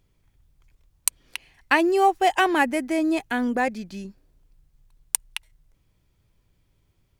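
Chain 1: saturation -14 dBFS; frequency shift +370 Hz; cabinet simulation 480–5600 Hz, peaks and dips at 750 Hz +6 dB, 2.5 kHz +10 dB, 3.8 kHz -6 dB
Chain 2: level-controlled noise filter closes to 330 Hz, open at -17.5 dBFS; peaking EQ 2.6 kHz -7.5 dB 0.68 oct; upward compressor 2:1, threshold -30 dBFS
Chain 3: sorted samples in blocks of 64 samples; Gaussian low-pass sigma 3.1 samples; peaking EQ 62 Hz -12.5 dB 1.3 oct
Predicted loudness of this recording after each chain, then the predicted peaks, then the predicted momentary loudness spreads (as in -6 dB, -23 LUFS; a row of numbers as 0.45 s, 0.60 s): -20.5 LUFS, -23.0 LUFS, -24.5 LUFS; -6.0 dBFS, -8.0 dBFS, -5.0 dBFS; 20 LU, 17 LU, 23 LU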